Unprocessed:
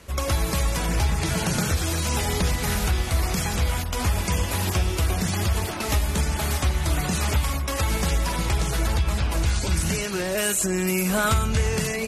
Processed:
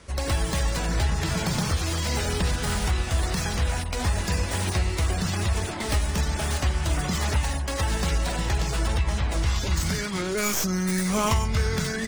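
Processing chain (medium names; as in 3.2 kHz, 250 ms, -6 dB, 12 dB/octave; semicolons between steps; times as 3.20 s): tracing distortion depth 0.053 ms; formant shift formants -4 st; trim -1.5 dB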